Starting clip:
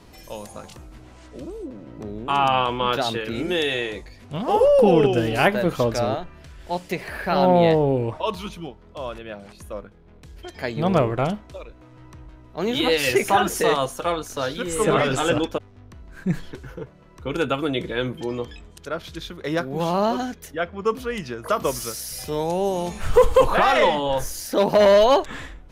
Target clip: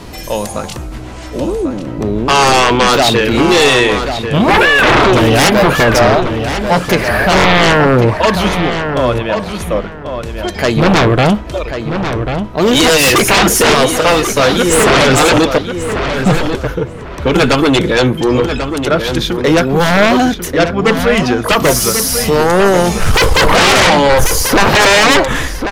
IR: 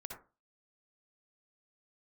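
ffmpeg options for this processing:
-filter_complex "[0:a]aeval=exprs='0.531*sin(PI/2*5.01*val(0)/0.531)':c=same,asplit=2[s0][s1];[s1]adelay=1091,lowpass=f=3400:p=1,volume=0.422,asplit=2[s2][s3];[s3]adelay=1091,lowpass=f=3400:p=1,volume=0.23,asplit=2[s4][s5];[s5]adelay=1091,lowpass=f=3400:p=1,volume=0.23[s6];[s2][s4][s6]amix=inputs=3:normalize=0[s7];[s0][s7]amix=inputs=2:normalize=0"

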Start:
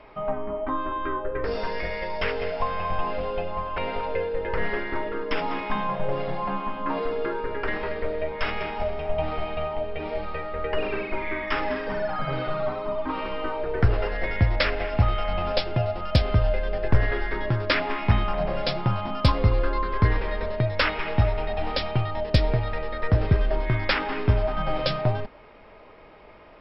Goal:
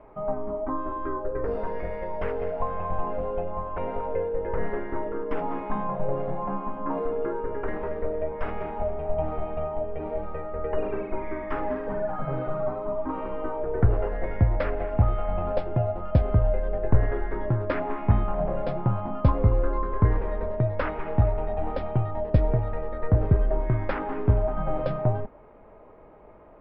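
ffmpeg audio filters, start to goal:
-af "lowpass=1000"

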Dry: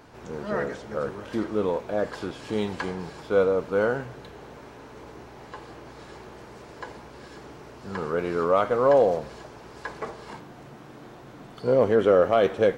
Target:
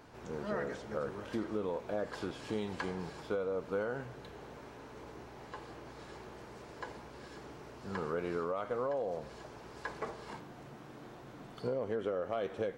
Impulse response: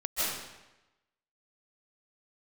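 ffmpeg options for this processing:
-af "alimiter=limit=0.168:level=0:latency=1:release=500,acompressor=threshold=0.0501:ratio=6,volume=0.531"

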